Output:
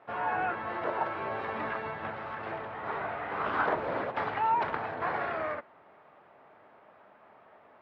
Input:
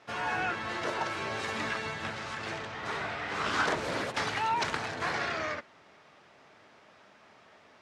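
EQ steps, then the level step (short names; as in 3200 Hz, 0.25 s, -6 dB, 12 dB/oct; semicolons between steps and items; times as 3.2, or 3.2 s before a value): air absorption 460 m; bell 790 Hz +9.5 dB 2.2 oct; -4.0 dB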